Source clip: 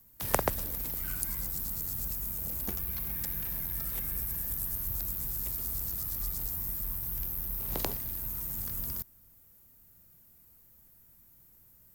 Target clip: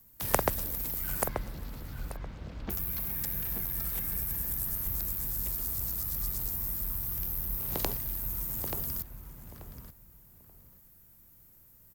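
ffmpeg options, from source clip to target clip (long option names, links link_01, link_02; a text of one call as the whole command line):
ffmpeg -i in.wav -filter_complex "[0:a]asettb=1/sr,asplit=3[link_01][link_02][link_03];[link_01]atrim=end=1.284[link_04];[link_02]atrim=start=1.28:end=2.7,asetpts=PTS-STARTPTS,afade=type=in:duration=0.004:curve=qsin,afade=type=out:start_time=1.416:duration=0.004:curve=qsin,lowpass=frequency=3900:width=0.5412,lowpass=frequency=3900:width=1.3066[link_05];[link_03]atrim=start=2.696[link_06];[link_04][link_05]acrossfade=duration=0.004:curve1=hsin:curve2=qsin[link_07];[link_07][link_06]acrossfade=duration=0.004:curve1=qsin:curve2=hsin,asplit=2[link_08][link_09];[link_09]adelay=883,lowpass=frequency=2200:poles=1,volume=-5.5dB,asplit=2[link_10][link_11];[link_11]adelay=883,lowpass=frequency=2200:poles=1,volume=0.23,asplit=2[link_12][link_13];[link_13]adelay=883,lowpass=frequency=2200:poles=1,volume=0.23[link_14];[link_10][link_12][link_14]amix=inputs=3:normalize=0[link_15];[link_08][link_15]amix=inputs=2:normalize=0,volume=1dB" out.wav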